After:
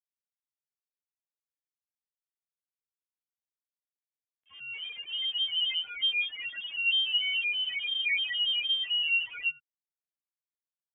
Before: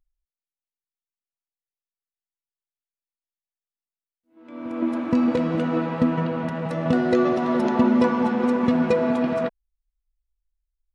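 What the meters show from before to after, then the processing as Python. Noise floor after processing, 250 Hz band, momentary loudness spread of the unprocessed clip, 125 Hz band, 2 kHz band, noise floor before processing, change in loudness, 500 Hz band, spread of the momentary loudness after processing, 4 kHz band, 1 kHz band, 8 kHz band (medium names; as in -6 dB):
under -85 dBFS, under -40 dB, 8 LU, under -40 dB, +4.0 dB, under -85 dBFS, -5.5 dB, under -40 dB, 10 LU, +19.0 dB, under -30 dB, no reading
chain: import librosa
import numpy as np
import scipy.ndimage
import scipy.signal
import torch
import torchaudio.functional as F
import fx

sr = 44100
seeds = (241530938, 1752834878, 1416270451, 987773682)

p1 = fx.over_compress(x, sr, threshold_db=-22.0, ratio=-0.5)
p2 = x + F.gain(torch.from_numpy(p1), -2.0).numpy()
p3 = p2 + 10.0 ** (-16.0 / 20.0) * np.pad(p2, (int(104 * sr / 1000.0), 0))[:len(p2)]
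p4 = fx.chorus_voices(p3, sr, voices=2, hz=0.35, base_ms=18, depth_ms=2.2, mix_pct=55)
p5 = fx.highpass(p4, sr, hz=1000.0, slope=6)
p6 = fx.dereverb_blind(p5, sr, rt60_s=1.6)
p7 = 10.0 ** (-21.5 / 20.0) * np.tanh(p6 / 10.0 ** (-21.5 / 20.0))
p8 = fx.spec_topn(p7, sr, count=2)
p9 = np.sign(p8) * np.maximum(np.abs(p8) - 10.0 ** (-59.0 / 20.0), 0.0)
p10 = fx.freq_invert(p9, sr, carrier_hz=3400)
y = F.gain(torch.from_numpy(p10), 6.0).numpy()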